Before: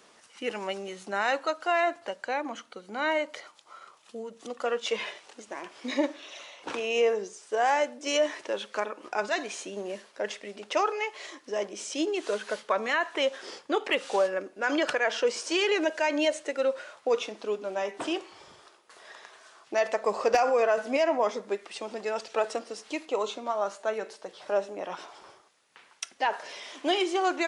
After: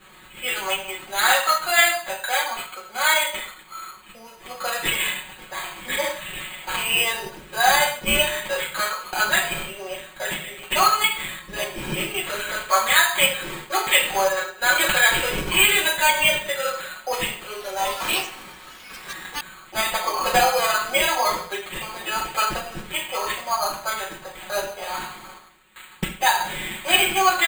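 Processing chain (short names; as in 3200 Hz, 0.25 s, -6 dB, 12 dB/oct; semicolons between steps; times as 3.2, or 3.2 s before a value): band-pass 3700 Hz, Q 1.1; reverb RT60 0.50 s, pre-delay 3 ms, DRR -7 dB; sample-and-hold 8×; comb 5.4 ms, depth 75%; 17.43–19.84 echoes that change speed 0.174 s, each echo +5 st, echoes 3, each echo -6 dB; gain +3 dB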